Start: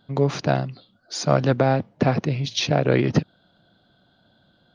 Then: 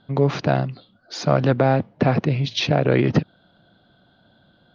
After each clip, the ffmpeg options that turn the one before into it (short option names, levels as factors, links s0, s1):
-filter_complex "[0:a]lowpass=3900,asplit=2[s0][s1];[s1]alimiter=limit=0.224:level=0:latency=1:release=61,volume=1.26[s2];[s0][s2]amix=inputs=2:normalize=0,volume=0.668"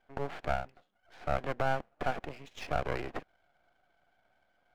-af "highpass=460,equalizer=f=740:t=q:w=4:g=8,equalizer=f=1100:t=q:w=4:g=-9,equalizer=f=1600:t=q:w=4:g=4,lowpass=f=2500:w=0.5412,lowpass=f=2500:w=1.3066,aeval=exprs='max(val(0),0)':c=same,volume=0.355"